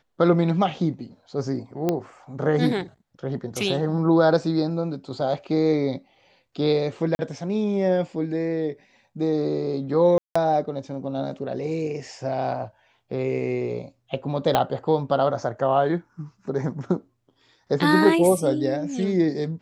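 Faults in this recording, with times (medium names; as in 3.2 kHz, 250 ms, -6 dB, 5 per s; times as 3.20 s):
1.89 s: pop -10 dBFS
7.15–7.19 s: dropout 40 ms
10.18–10.36 s: dropout 175 ms
14.55 s: pop -6 dBFS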